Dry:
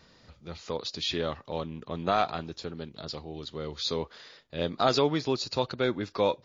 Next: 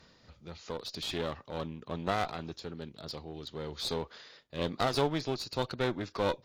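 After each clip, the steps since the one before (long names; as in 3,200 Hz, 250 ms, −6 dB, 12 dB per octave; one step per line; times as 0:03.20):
asymmetric clip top −32 dBFS
amplitude modulation by smooth noise, depth 50%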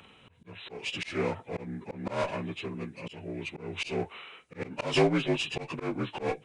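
partials spread apart or drawn together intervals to 83%
bass and treble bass 0 dB, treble +11 dB
volume swells 172 ms
level +6.5 dB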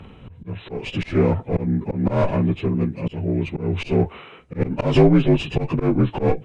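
spectral tilt −4 dB per octave
in parallel at +3 dB: brickwall limiter −17 dBFS, peak gain reduction 11.5 dB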